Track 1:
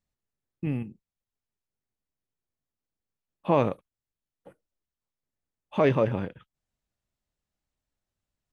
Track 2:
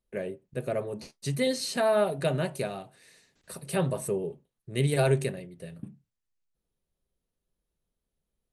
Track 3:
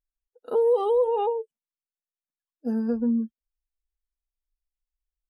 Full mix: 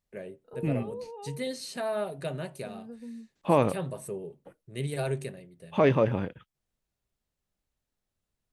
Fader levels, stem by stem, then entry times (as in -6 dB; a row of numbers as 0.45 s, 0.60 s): 0.0 dB, -7.0 dB, -18.5 dB; 0.00 s, 0.00 s, 0.00 s